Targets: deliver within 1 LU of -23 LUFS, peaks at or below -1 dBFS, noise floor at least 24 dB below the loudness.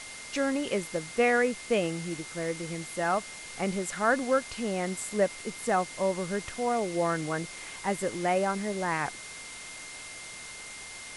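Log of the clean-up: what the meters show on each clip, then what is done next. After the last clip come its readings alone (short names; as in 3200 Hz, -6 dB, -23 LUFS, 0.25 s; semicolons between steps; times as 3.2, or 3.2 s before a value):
steady tone 2100 Hz; tone level -45 dBFS; noise floor -43 dBFS; noise floor target -55 dBFS; loudness -30.5 LUFS; peak -12.5 dBFS; loudness target -23.0 LUFS
-> notch 2100 Hz, Q 30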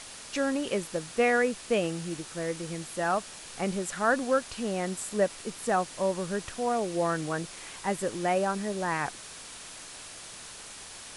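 steady tone none; noise floor -45 dBFS; noise floor target -54 dBFS
-> denoiser 9 dB, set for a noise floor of -45 dBFS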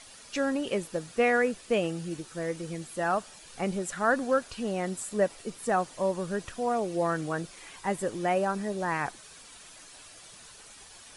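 noise floor -51 dBFS; noise floor target -54 dBFS
-> denoiser 6 dB, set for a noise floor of -51 dBFS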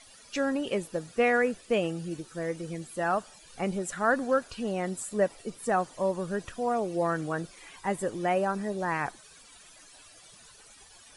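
noise floor -54 dBFS; loudness -30.0 LUFS; peak -13.0 dBFS; loudness target -23.0 LUFS
-> gain +7 dB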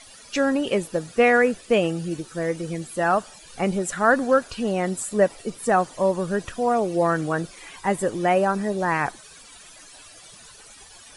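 loudness -23.0 LUFS; peak -6.0 dBFS; noise floor -47 dBFS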